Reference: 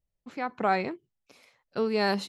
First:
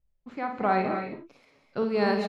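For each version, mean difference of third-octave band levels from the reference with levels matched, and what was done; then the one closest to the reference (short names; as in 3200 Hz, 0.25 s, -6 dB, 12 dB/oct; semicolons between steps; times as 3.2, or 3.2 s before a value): 5.0 dB: LPF 2300 Hz 6 dB/oct; low shelf 61 Hz +11 dB; on a send: early reflections 53 ms -6.5 dB, 74 ms -16 dB; on the sum: non-linear reverb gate 0.29 s rising, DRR 6 dB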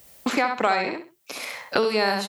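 9.0 dB: HPF 490 Hz 6 dB/oct; high shelf 9200 Hz +10.5 dB; feedback echo 65 ms, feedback 20%, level -5 dB; three-band squash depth 100%; gain +6.5 dB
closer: first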